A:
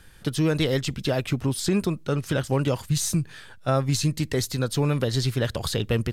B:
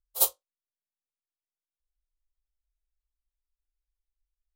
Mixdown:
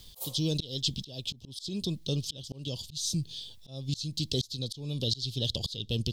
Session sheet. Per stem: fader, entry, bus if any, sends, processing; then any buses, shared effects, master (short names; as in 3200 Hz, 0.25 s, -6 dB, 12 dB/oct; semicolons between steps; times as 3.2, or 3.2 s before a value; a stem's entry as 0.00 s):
-4.0 dB, 0.00 s, no send, EQ curve 180 Hz 0 dB, 560 Hz -6 dB, 2000 Hz -25 dB, 3300 Hz +14 dB, 5000 Hz +13 dB, 9500 Hz -2 dB
+1.0 dB, 0.00 s, no send, HPF 47 Hz 24 dB/oct; fast leveller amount 50%; auto duck -14 dB, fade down 0.70 s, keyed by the first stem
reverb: off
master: bell 1400 Hz -14 dB 0.3 oct; auto swell 0.377 s